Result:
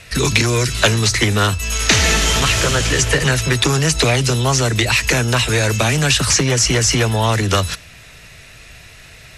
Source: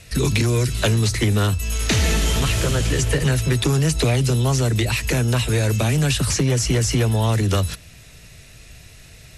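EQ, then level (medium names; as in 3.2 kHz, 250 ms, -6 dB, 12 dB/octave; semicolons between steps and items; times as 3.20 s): dynamic bell 6.1 kHz, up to +7 dB, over -40 dBFS, Q 1.1; peaking EQ 1.5 kHz +9.5 dB 3 oct; 0.0 dB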